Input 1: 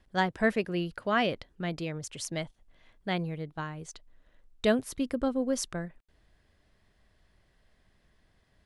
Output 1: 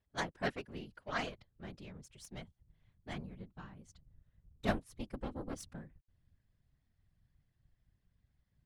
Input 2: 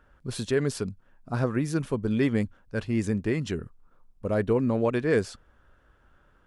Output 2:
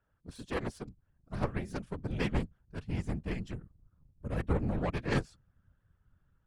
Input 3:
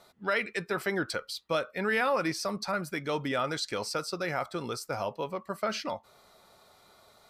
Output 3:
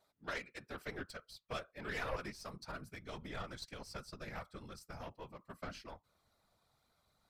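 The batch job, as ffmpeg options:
-af "aeval=exprs='0.266*(cos(1*acos(clip(val(0)/0.266,-1,1)))-cos(1*PI/2))+0.075*(cos(3*acos(clip(val(0)/0.266,-1,1)))-cos(3*PI/2))+0.00237*(cos(8*acos(clip(val(0)/0.266,-1,1)))-cos(8*PI/2))':c=same,asubboost=boost=4:cutoff=160,afftfilt=real='hypot(re,im)*cos(2*PI*random(0))':imag='hypot(re,im)*sin(2*PI*random(1))':win_size=512:overlap=0.75,volume=1.68"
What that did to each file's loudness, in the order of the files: -11.5 LU, -8.5 LU, -14.5 LU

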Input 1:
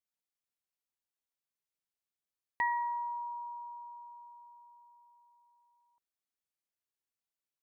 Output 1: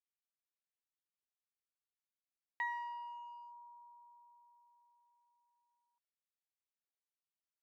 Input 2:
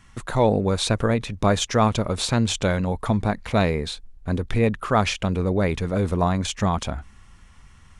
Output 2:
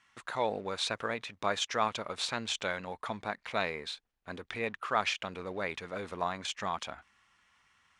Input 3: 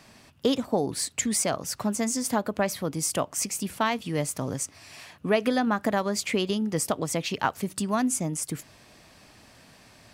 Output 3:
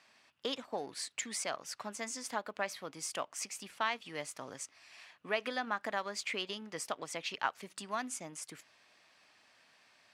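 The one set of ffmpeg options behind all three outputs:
-filter_complex "[0:a]asplit=2[s0][s1];[s1]aeval=exprs='sgn(val(0))*max(abs(val(0))-0.01,0)':c=same,volume=0.473[s2];[s0][s2]amix=inputs=2:normalize=0,bandpass=f=2200:t=q:w=0.58:csg=0,volume=0.398"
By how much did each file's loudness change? -7.5 LU, -12.0 LU, -11.5 LU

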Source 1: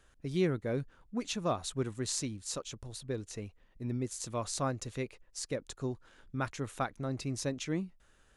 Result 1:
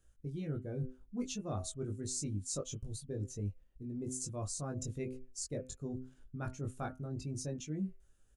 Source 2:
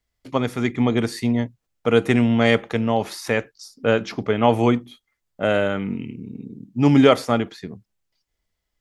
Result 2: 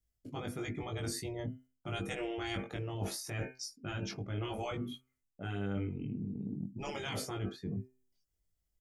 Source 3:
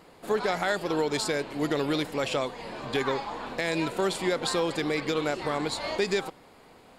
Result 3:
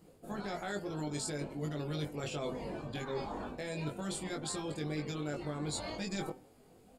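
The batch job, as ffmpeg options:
-filter_complex "[0:a]afftfilt=real='re*lt(hypot(re,im),0.398)':imag='im*lt(hypot(re,im),0.398)':win_size=1024:overlap=0.75,bandreject=f=128.5:t=h:w=4,bandreject=f=257:t=h:w=4,bandreject=f=385.5:t=h:w=4,bandreject=f=514:t=h:w=4,bandreject=f=642.5:t=h:w=4,bandreject=f=771:t=h:w=4,bandreject=f=899.5:t=h:w=4,bandreject=f=1028:t=h:w=4,bandreject=f=1156.5:t=h:w=4,bandreject=f=1285:t=h:w=4,bandreject=f=1413.5:t=h:w=4,bandreject=f=1542:t=h:w=4,bandreject=f=1670.5:t=h:w=4,bandreject=f=1799:t=h:w=4,bandreject=f=1927.5:t=h:w=4,bandreject=f=2056:t=h:w=4,bandreject=f=2184.5:t=h:w=4,bandreject=f=2313:t=h:w=4,bandreject=f=2441.5:t=h:w=4,bandreject=f=2570:t=h:w=4,bandreject=f=2698.5:t=h:w=4,bandreject=f=2827:t=h:w=4,bandreject=f=2955.5:t=h:w=4,bandreject=f=3084:t=h:w=4,afftdn=nr=12:nf=-43,equalizer=f=250:t=o:w=1:g=-4,equalizer=f=500:t=o:w=1:g=-5,equalizer=f=1000:t=o:w=1:g=-11,equalizer=f=2000:t=o:w=1:g=-10,equalizer=f=4000:t=o:w=1:g=-9,areverse,acompressor=threshold=0.00631:ratio=10,areverse,asplit=2[s0][s1];[s1]adelay=20,volume=0.708[s2];[s0][s2]amix=inputs=2:normalize=0,volume=2.37"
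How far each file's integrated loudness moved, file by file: -4.0 LU, -19.0 LU, -10.0 LU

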